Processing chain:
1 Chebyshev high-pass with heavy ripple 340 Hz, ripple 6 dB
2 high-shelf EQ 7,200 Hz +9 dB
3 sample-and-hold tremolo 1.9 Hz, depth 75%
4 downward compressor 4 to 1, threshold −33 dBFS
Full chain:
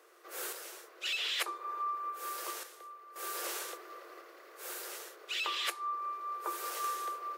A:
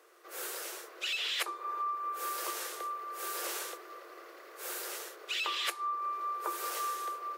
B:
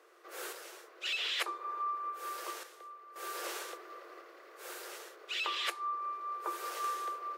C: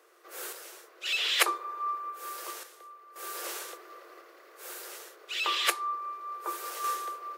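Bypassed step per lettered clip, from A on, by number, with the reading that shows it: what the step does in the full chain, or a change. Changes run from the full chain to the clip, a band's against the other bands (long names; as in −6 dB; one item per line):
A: 3, change in momentary loudness spread −3 LU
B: 2, 8 kHz band −4.5 dB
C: 4, change in crest factor +5.0 dB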